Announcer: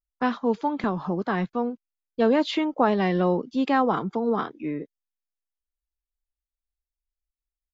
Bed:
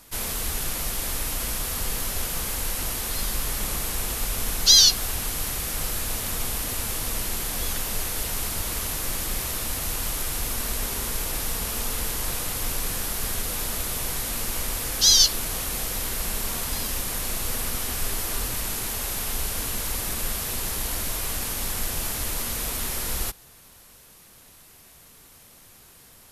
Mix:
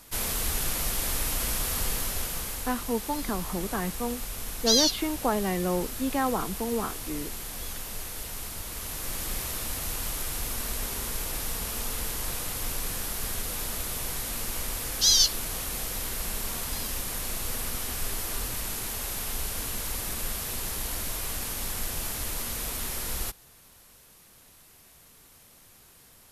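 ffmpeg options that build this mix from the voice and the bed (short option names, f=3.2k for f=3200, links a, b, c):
-filter_complex "[0:a]adelay=2450,volume=-5.5dB[a];[1:a]volume=4dB,afade=t=out:st=1.79:d=0.97:silence=0.398107,afade=t=in:st=8.71:d=0.57:silence=0.595662[b];[a][b]amix=inputs=2:normalize=0"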